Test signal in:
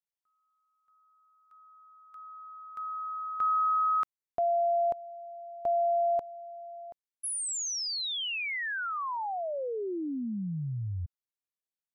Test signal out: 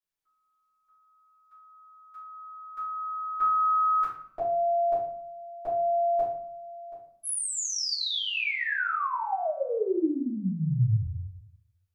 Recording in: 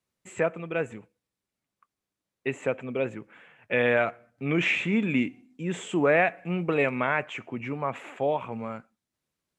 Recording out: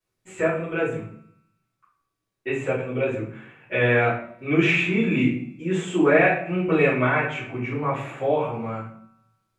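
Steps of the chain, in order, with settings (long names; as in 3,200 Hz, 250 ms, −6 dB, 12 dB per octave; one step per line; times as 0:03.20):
tuned comb filter 190 Hz, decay 1.3 s, mix 50%
rectangular room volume 65 cubic metres, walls mixed, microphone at 2.8 metres
level −2 dB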